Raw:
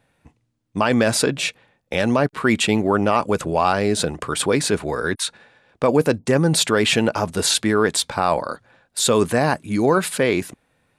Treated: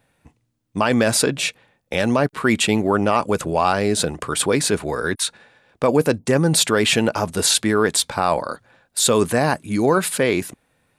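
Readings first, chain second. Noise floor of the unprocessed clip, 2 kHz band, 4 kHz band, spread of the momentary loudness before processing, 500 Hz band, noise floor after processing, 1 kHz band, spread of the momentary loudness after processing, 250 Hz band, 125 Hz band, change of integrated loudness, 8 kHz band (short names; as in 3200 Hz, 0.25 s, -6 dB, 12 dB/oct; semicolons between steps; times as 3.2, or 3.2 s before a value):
-69 dBFS, 0.0 dB, +1.0 dB, 8 LU, 0.0 dB, -69 dBFS, 0.0 dB, 8 LU, 0.0 dB, 0.0 dB, +0.5 dB, +3.0 dB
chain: high shelf 9300 Hz +7 dB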